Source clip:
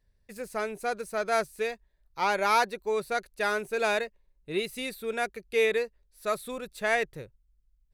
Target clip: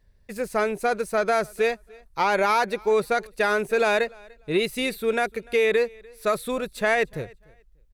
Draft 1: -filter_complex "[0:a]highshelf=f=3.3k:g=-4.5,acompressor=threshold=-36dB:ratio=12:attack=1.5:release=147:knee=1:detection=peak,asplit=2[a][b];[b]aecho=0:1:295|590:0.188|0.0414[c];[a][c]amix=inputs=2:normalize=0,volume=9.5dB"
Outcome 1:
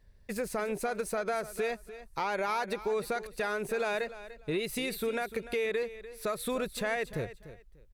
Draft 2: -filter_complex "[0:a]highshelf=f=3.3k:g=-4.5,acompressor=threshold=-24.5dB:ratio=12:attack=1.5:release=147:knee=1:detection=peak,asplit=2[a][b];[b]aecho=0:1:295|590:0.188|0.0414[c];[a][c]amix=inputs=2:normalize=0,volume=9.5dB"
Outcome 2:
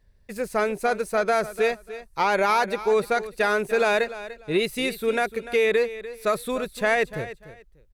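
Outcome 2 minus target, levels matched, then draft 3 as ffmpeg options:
echo-to-direct +11 dB
-filter_complex "[0:a]highshelf=f=3.3k:g=-4.5,acompressor=threshold=-24.5dB:ratio=12:attack=1.5:release=147:knee=1:detection=peak,asplit=2[a][b];[b]aecho=0:1:295|590:0.0531|0.0117[c];[a][c]amix=inputs=2:normalize=0,volume=9.5dB"

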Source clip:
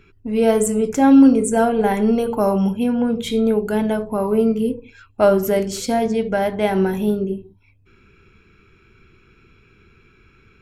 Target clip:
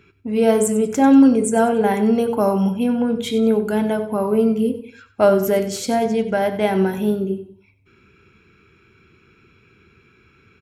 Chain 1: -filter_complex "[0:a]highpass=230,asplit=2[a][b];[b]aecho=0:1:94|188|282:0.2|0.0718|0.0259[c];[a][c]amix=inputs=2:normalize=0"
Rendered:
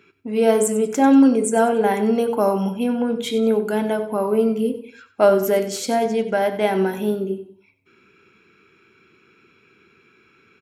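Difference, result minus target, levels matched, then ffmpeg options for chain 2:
125 Hz band -3.0 dB
-filter_complex "[0:a]highpass=81,asplit=2[a][b];[b]aecho=0:1:94|188|282:0.2|0.0718|0.0259[c];[a][c]amix=inputs=2:normalize=0"

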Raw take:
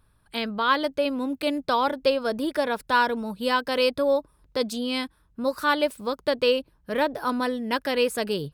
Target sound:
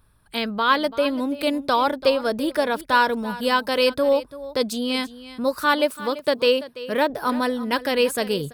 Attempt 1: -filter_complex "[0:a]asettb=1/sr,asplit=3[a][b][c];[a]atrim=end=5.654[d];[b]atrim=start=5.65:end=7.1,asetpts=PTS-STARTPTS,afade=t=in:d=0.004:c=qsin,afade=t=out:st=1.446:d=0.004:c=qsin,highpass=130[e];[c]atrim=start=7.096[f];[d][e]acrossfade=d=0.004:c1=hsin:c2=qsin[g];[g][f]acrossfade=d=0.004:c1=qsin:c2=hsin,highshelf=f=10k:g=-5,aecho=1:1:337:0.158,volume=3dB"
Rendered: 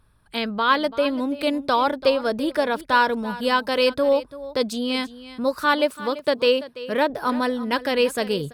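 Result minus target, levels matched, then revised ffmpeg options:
8000 Hz band -4.0 dB
-filter_complex "[0:a]asettb=1/sr,asplit=3[a][b][c];[a]atrim=end=5.654[d];[b]atrim=start=5.65:end=7.1,asetpts=PTS-STARTPTS,afade=t=in:d=0.004:c=qsin,afade=t=out:st=1.446:d=0.004:c=qsin,highpass=130[e];[c]atrim=start=7.096[f];[d][e]acrossfade=d=0.004:c1=hsin:c2=qsin[g];[g][f]acrossfade=d=0.004:c1=qsin:c2=hsin,highshelf=f=10k:g=4.5,aecho=1:1:337:0.158,volume=3dB"

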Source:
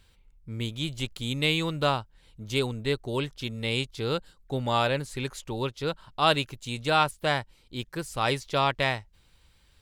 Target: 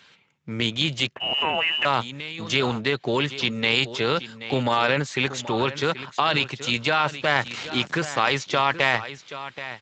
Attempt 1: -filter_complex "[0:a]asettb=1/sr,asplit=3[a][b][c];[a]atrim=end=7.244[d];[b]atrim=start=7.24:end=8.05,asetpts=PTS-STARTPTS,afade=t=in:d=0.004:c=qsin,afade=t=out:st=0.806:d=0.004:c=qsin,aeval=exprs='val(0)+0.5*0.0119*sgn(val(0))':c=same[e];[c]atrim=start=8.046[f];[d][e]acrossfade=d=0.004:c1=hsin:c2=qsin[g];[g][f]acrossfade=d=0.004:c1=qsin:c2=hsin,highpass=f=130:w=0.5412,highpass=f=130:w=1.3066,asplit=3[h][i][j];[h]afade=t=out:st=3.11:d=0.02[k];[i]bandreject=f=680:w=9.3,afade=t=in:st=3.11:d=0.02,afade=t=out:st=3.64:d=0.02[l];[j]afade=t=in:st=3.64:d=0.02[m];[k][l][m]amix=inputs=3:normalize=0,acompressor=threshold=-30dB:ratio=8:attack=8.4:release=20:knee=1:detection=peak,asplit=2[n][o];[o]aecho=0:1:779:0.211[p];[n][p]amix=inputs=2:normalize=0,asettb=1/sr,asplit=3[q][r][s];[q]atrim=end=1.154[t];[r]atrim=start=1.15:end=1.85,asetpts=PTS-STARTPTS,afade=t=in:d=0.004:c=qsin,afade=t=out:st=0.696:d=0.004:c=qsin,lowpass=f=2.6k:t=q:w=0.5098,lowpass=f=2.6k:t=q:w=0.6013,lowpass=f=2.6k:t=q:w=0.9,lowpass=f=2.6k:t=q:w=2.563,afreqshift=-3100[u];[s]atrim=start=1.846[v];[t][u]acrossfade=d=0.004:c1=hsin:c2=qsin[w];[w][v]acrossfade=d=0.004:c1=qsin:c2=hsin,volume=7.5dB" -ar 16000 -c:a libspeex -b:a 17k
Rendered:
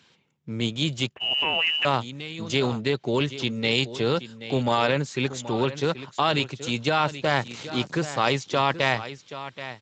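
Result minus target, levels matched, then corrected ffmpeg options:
2000 Hz band -2.5 dB
-filter_complex "[0:a]asettb=1/sr,asplit=3[a][b][c];[a]atrim=end=7.244[d];[b]atrim=start=7.24:end=8.05,asetpts=PTS-STARTPTS,afade=t=in:d=0.004:c=qsin,afade=t=out:st=0.806:d=0.004:c=qsin,aeval=exprs='val(0)+0.5*0.0119*sgn(val(0))':c=same[e];[c]atrim=start=8.046[f];[d][e]acrossfade=d=0.004:c1=hsin:c2=qsin[g];[g][f]acrossfade=d=0.004:c1=qsin:c2=hsin,highpass=f=130:w=0.5412,highpass=f=130:w=1.3066,equalizer=f=1.8k:w=0.5:g=9,asplit=3[h][i][j];[h]afade=t=out:st=3.11:d=0.02[k];[i]bandreject=f=680:w=9.3,afade=t=in:st=3.11:d=0.02,afade=t=out:st=3.64:d=0.02[l];[j]afade=t=in:st=3.64:d=0.02[m];[k][l][m]amix=inputs=3:normalize=0,acompressor=threshold=-30dB:ratio=8:attack=8.4:release=20:knee=1:detection=peak,asplit=2[n][o];[o]aecho=0:1:779:0.211[p];[n][p]amix=inputs=2:normalize=0,asettb=1/sr,asplit=3[q][r][s];[q]atrim=end=1.154[t];[r]atrim=start=1.15:end=1.85,asetpts=PTS-STARTPTS,afade=t=in:d=0.004:c=qsin,afade=t=out:st=0.696:d=0.004:c=qsin,lowpass=f=2.6k:t=q:w=0.5098,lowpass=f=2.6k:t=q:w=0.6013,lowpass=f=2.6k:t=q:w=0.9,lowpass=f=2.6k:t=q:w=2.563,afreqshift=-3100[u];[s]atrim=start=1.846[v];[t][u]acrossfade=d=0.004:c1=hsin:c2=qsin[w];[w][v]acrossfade=d=0.004:c1=qsin:c2=hsin,volume=7.5dB" -ar 16000 -c:a libspeex -b:a 17k

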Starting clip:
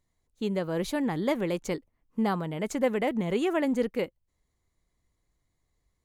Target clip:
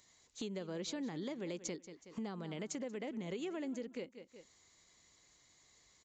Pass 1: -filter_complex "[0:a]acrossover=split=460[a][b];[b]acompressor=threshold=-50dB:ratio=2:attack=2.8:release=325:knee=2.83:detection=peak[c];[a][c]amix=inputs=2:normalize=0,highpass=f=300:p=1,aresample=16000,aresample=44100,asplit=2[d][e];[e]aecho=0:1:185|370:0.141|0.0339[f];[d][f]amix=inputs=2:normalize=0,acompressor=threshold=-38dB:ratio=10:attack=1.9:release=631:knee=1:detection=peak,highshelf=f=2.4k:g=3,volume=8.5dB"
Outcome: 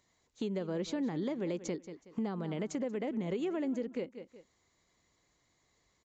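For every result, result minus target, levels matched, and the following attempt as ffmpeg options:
compressor: peak gain reduction -7 dB; 4000 Hz band -7.0 dB
-filter_complex "[0:a]acrossover=split=460[a][b];[b]acompressor=threshold=-50dB:ratio=2:attack=2.8:release=325:knee=2.83:detection=peak[c];[a][c]amix=inputs=2:normalize=0,highpass=f=300:p=1,aresample=16000,aresample=44100,asplit=2[d][e];[e]aecho=0:1:185|370:0.141|0.0339[f];[d][f]amix=inputs=2:normalize=0,acompressor=threshold=-46dB:ratio=10:attack=1.9:release=631:knee=1:detection=peak,highshelf=f=2.4k:g=3,volume=8.5dB"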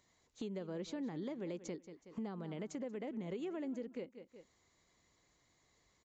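4000 Hz band -7.0 dB
-filter_complex "[0:a]acrossover=split=460[a][b];[b]acompressor=threshold=-50dB:ratio=2:attack=2.8:release=325:knee=2.83:detection=peak[c];[a][c]amix=inputs=2:normalize=0,highpass=f=300:p=1,aresample=16000,aresample=44100,asplit=2[d][e];[e]aecho=0:1:185|370:0.141|0.0339[f];[d][f]amix=inputs=2:normalize=0,acompressor=threshold=-46dB:ratio=10:attack=1.9:release=631:knee=1:detection=peak,highshelf=f=2.4k:g=14.5,volume=8.5dB"

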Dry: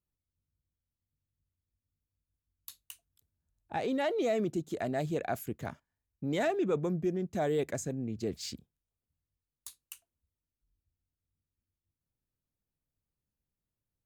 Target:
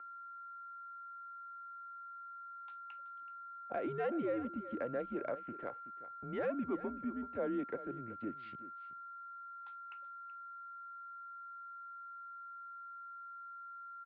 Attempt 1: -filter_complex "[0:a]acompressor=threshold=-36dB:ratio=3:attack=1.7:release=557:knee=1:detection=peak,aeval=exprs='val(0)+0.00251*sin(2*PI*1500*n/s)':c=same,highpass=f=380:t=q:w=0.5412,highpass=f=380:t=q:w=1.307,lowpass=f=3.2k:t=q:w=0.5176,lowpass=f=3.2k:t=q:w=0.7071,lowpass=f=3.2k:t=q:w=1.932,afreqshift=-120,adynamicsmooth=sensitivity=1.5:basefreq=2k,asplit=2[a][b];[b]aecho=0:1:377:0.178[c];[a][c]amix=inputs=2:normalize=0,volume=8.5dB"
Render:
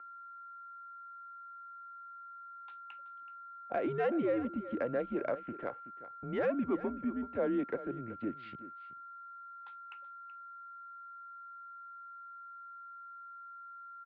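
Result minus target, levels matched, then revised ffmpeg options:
compressor: peak gain reduction -4.5 dB
-filter_complex "[0:a]acompressor=threshold=-43dB:ratio=3:attack=1.7:release=557:knee=1:detection=peak,aeval=exprs='val(0)+0.00251*sin(2*PI*1500*n/s)':c=same,highpass=f=380:t=q:w=0.5412,highpass=f=380:t=q:w=1.307,lowpass=f=3.2k:t=q:w=0.5176,lowpass=f=3.2k:t=q:w=0.7071,lowpass=f=3.2k:t=q:w=1.932,afreqshift=-120,adynamicsmooth=sensitivity=1.5:basefreq=2k,asplit=2[a][b];[b]aecho=0:1:377:0.178[c];[a][c]amix=inputs=2:normalize=0,volume=8.5dB"

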